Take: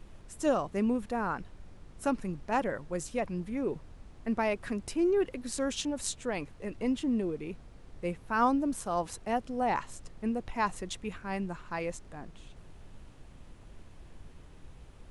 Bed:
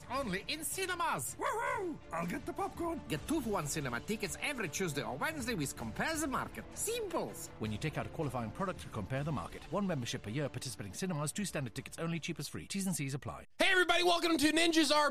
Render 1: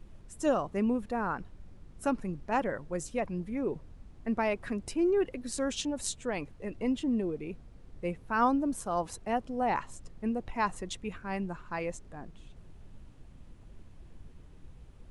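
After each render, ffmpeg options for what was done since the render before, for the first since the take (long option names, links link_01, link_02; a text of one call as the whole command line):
ffmpeg -i in.wav -af "afftdn=noise_reduction=6:noise_floor=-52" out.wav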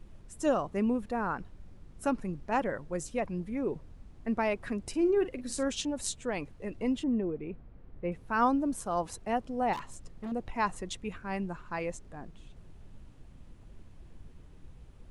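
ffmpeg -i in.wav -filter_complex "[0:a]asettb=1/sr,asplit=3[link_01][link_02][link_03];[link_01]atrim=end=4.894[link_04];[link_02]atrim=start=4.89:end=5.69,asetpts=PTS-STARTPTS,afade=type=in:duration=0.004:curve=qsin,afade=type=out:start_time=0.796:duration=0.004:curve=qsin,asplit=2[link_05][link_06];[link_06]adelay=44,volume=-13dB[link_07];[link_05][link_07]amix=inputs=2:normalize=0,atrim=end_sample=35280[link_08];[link_03]atrim=start=5.686[link_09];[link_04][link_08]acrossfade=duration=0.004:curve1=hsin:curve2=qsin[link_10];[link_10][link_09]acrossfade=duration=0.004:curve1=qsin:curve2=hsin,asettb=1/sr,asplit=3[link_11][link_12][link_13];[link_11]atrim=end=7.044[link_14];[link_12]atrim=start=7.04:end=8.12,asetpts=PTS-STARTPTS,afade=type=in:duration=0.004:curve=qsin,afade=type=out:start_time=1.076:duration=0.004:curve=qsin,lowpass=2100[link_15];[link_13]atrim=start=8.116[link_16];[link_14][link_15]acrossfade=duration=0.004:curve1=hsin:curve2=qsin[link_17];[link_17][link_16]acrossfade=duration=0.004:curve1=qsin:curve2=hsin,asettb=1/sr,asplit=3[link_18][link_19][link_20];[link_18]atrim=end=9.734[link_21];[link_19]atrim=start=9.73:end=10.32,asetpts=PTS-STARTPTS,afade=type=in:duration=0.004:curve=qsin,afade=type=out:start_time=0.586:duration=0.004:curve=qsin,volume=35dB,asoftclip=hard,volume=-35dB[link_22];[link_20]atrim=start=10.316[link_23];[link_21][link_22]acrossfade=duration=0.004:curve1=hsin:curve2=qsin[link_24];[link_24][link_23]acrossfade=duration=0.004:curve1=qsin:curve2=hsin" out.wav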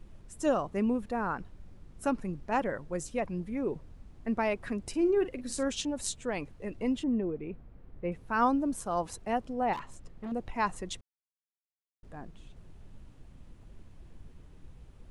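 ffmpeg -i in.wav -filter_complex "[0:a]asettb=1/sr,asplit=3[link_01][link_02][link_03];[link_01]atrim=end=9.534[link_04];[link_02]atrim=start=9.53:end=10.31,asetpts=PTS-STARTPTS,afade=type=in:duration=0.004:curve=qsin,afade=type=out:start_time=0.776:duration=0.004:curve=qsin,bass=frequency=250:gain=-1,treble=frequency=4000:gain=-6[link_05];[link_03]atrim=start=10.306[link_06];[link_04][link_05]acrossfade=duration=0.004:curve1=hsin:curve2=qsin[link_07];[link_07][link_06]acrossfade=duration=0.004:curve1=qsin:curve2=hsin,asplit=3[link_08][link_09][link_10];[link_08]atrim=end=11.01,asetpts=PTS-STARTPTS,afade=type=out:start_time=11.006:duration=0.004:curve=hsin[link_11];[link_09]atrim=start=11.01:end=12.03,asetpts=PTS-STARTPTS,volume=0[link_12];[link_10]atrim=start=12.03,asetpts=PTS-STARTPTS,afade=type=in:duration=0.004:curve=hsin[link_13];[link_11][link_12][link_13]concat=n=3:v=0:a=1" out.wav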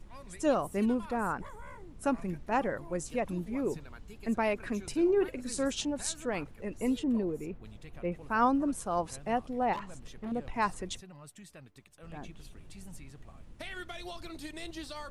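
ffmpeg -i in.wav -i bed.wav -filter_complex "[1:a]volume=-14dB[link_01];[0:a][link_01]amix=inputs=2:normalize=0" out.wav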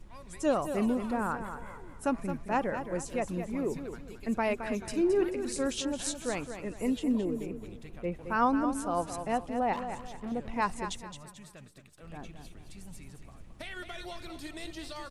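ffmpeg -i in.wav -af "aecho=1:1:218|436|654|872:0.355|0.124|0.0435|0.0152" out.wav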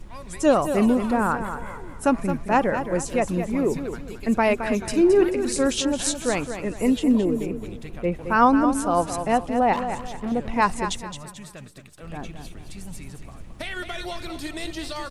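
ffmpeg -i in.wav -af "volume=9.5dB" out.wav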